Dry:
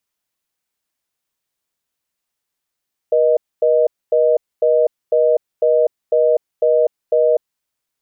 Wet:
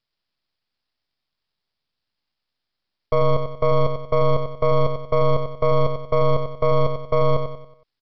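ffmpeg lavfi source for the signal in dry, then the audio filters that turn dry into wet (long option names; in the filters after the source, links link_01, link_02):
-f lavfi -i "aevalsrc='0.211*(sin(2*PI*480*t)+sin(2*PI*620*t))*clip(min(mod(t,0.5),0.25-mod(t,0.5))/0.005,0,1)':duration=4.45:sample_rate=44100"
-af "bass=frequency=250:gain=8,treble=frequency=4000:gain=15,aresample=11025,aeval=exprs='max(val(0),0)':channel_layout=same,aresample=44100,aecho=1:1:93|186|279|372|465:0.447|0.183|0.0751|0.0308|0.0126"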